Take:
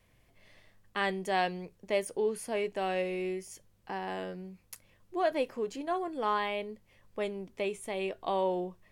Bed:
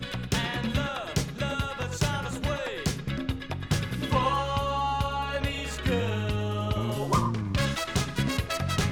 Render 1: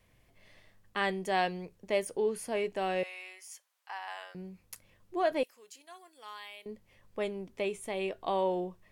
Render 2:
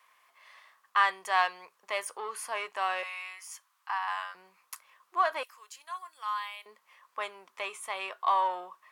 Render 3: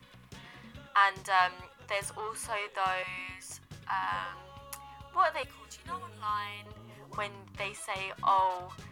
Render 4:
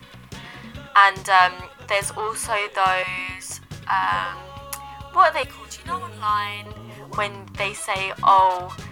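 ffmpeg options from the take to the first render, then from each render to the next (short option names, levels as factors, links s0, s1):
-filter_complex "[0:a]asettb=1/sr,asplit=3[s0][s1][s2];[s0]atrim=end=3.034[s3];[s1]atrim=start=3.03:end=4.35,asetpts=PTS-STARTPTS,afade=t=in:d=0.004:c=qsin,afade=t=out:st=1.316:d=0.004:c=qsin,highpass=f=840:w=0.5412,highpass=f=840:w=1.3066[s4];[s2]atrim=start=4.346[s5];[s3][s4]acrossfade=d=0.004:c1=hsin:c2=qsin[s6];[s6][s5]acrossfade=d=0.004:c1=qsin:c2=hsin,asettb=1/sr,asplit=3[s7][s8][s9];[s7]atrim=end=5.434[s10];[s8]atrim=start=5.43:end=6.66,asetpts=PTS-STARTPTS,afade=t=in:d=0.004:c=qsin,afade=t=out:st=1.226:d=0.004:c=qsin,aderivative[s11];[s9]atrim=start=6.656[s12];[s10][s11]acrossfade=d=0.004:c1=hsin:c2=qsin[s13];[s13][s12]acrossfade=d=0.004:c1=qsin:c2=hsin"
-filter_complex "[0:a]asplit=2[s0][s1];[s1]asoftclip=type=tanh:threshold=0.0237,volume=0.473[s2];[s0][s2]amix=inputs=2:normalize=0,highpass=f=1100:t=q:w=4.9"
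-filter_complex "[1:a]volume=0.0794[s0];[0:a][s0]amix=inputs=2:normalize=0"
-af "volume=3.76,alimiter=limit=0.708:level=0:latency=1"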